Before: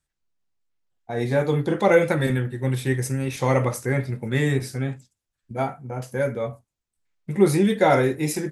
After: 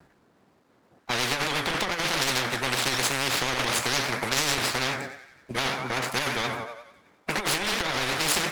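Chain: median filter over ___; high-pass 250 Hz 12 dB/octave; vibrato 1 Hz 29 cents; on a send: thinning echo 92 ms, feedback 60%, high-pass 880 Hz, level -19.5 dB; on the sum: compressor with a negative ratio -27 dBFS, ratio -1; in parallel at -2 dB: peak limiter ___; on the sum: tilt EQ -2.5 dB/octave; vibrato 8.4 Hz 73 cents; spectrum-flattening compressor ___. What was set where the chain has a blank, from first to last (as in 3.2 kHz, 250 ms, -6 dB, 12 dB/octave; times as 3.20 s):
15 samples, -25.5 dBFS, 10:1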